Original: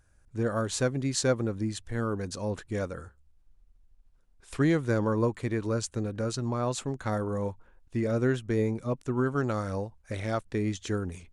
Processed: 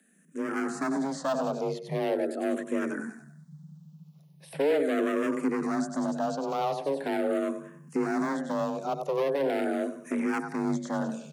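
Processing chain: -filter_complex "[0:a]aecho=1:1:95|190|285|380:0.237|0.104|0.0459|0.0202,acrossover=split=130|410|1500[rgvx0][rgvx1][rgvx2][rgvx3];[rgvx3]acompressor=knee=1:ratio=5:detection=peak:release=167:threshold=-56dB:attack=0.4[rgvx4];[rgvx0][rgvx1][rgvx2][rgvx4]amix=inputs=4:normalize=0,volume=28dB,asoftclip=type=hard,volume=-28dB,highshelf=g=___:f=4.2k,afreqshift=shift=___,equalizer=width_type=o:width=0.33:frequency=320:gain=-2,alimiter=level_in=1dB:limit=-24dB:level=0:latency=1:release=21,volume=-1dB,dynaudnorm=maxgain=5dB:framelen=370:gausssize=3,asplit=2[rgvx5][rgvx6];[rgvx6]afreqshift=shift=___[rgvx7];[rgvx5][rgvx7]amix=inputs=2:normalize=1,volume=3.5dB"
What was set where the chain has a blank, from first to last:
8.5, 140, -0.41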